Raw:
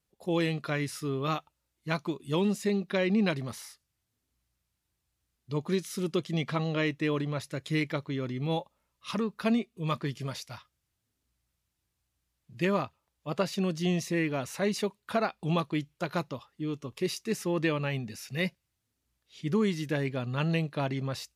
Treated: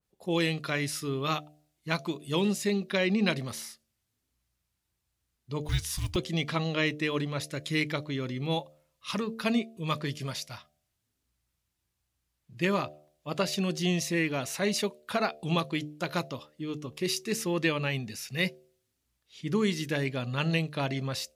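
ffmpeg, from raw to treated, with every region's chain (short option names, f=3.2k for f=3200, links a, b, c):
-filter_complex "[0:a]asettb=1/sr,asplit=3[a][b][c];[a]atrim=end=5.634[d];[b]atrim=start=5.63:end=6.16,asetpts=PTS-STARTPTS,afade=t=in:d=0.004:c=qsin,afade=t=out:st=0.526:d=0.004:c=qsin,highshelf=f=10k:g=3.5,acrusher=bits=9:mode=log:mix=0:aa=0.000001,afreqshift=-250[e];[c]atrim=start=6.156[f];[d][e]acrossfade=d=0.004:c1=hsin:c2=qsin[g];[g][f]acrossfade=d=0.004:c1=qsin:c2=hsin,bandreject=f=75.11:t=h:w=4,bandreject=f=150.22:t=h:w=4,bandreject=f=225.33:t=h:w=4,bandreject=f=300.44:t=h:w=4,bandreject=f=375.55:t=h:w=4,bandreject=f=450.66:t=h:w=4,bandreject=f=525.77:t=h:w=4,bandreject=f=600.88:t=h:w=4,bandreject=f=675.99:t=h:w=4,bandreject=f=751.1:t=h:w=4,adynamicequalizer=threshold=0.00562:dfrequency=1900:dqfactor=0.7:tfrequency=1900:tqfactor=0.7:attack=5:release=100:ratio=0.375:range=3:mode=boostabove:tftype=highshelf"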